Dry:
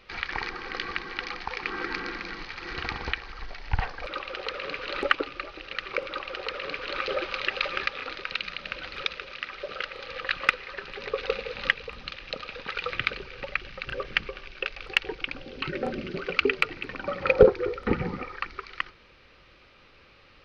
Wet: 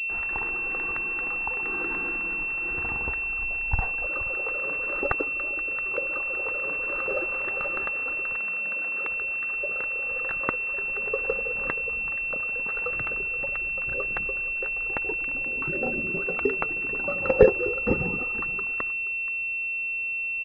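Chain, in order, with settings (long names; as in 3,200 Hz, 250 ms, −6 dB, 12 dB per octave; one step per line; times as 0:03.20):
0:08.38–0:09.09: Butterworth high-pass 160 Hz 72 dB per octave
single-tap delay 477 ms −16 dB
switching amplifier with a slow clock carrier 2,700 Hz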